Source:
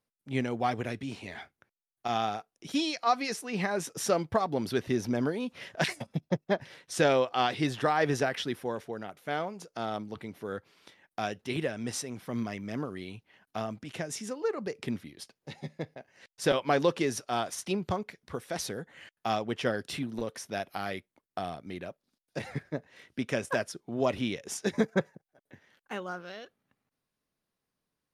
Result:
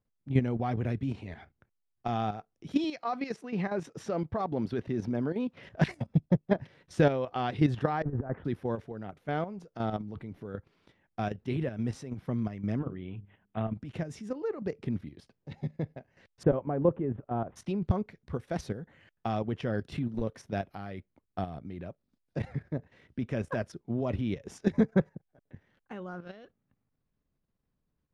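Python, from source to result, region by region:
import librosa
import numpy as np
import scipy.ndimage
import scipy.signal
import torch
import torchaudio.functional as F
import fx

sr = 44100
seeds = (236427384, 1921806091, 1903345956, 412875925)

y = fx.chain(x, sr, fx.highpass(hz=200.0, slope=6),
    fx.high_shelf(hz=9800.0, db=-11.0), at=(2.84, 5.63))
y = fx.chain(y, sr, fx.over_compress(threshold_db=-32.0, ratio=-0.5),
    fx.lowpass(hz=1300.0, slope=24), at=(8.02, 8.45))
y = fx.chain(y, sr, fx.lowpass(hz=5700.0, slope=24),
    fx.resample_bad(factor=6, down='none', up='filtered'),
    fx.hum_notches(base_hz=50, count=9), at=(12.79, 13.75))
y = fx.chain(y, sr, fx.lowpass(hz=1000.0, slope=12),
    fx.resample_bad(factor=6, down='none', up='filtered'), at=(16.43, 17.56))
y = fx.riaa(y, sr, side='playback')
y = fx.level_steps(y, sr, step_db=10)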